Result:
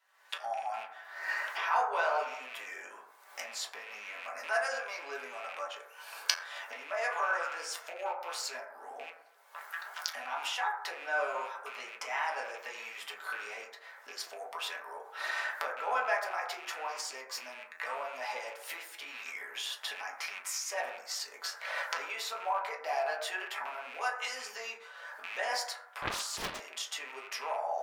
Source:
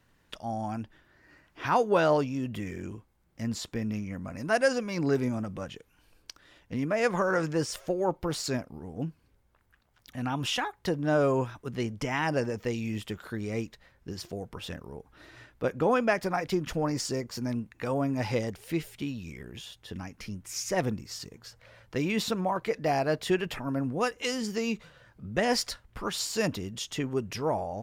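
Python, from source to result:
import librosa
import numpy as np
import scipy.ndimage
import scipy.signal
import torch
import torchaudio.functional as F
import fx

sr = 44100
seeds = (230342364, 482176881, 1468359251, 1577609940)

y = fx.rattle_buzz(x, sr, strikes_db=-38.0, level_db=-32.0)
y = fx.recorder_agc(y, sr, target_db=-21.0, rise_db_per_s=51.0, max_gain_db=30)
y = scipy.signal.sosfilt(scipy.signal.butter(4, 720.0, 'highpass', fs=sr, output='sos'), y)
y = fx.rev_fdn(y, sr, rt60_s=0.83, lf_ratio=0.75, hf_ratio=0.3, size_ms=70.0, drr_db=-4.0)
y = fx.doppler_dist(y, sr, depth_ms=0.94, at=(26.02, 26.6))
y = y * librosa.db_to_amplitude(-7.5)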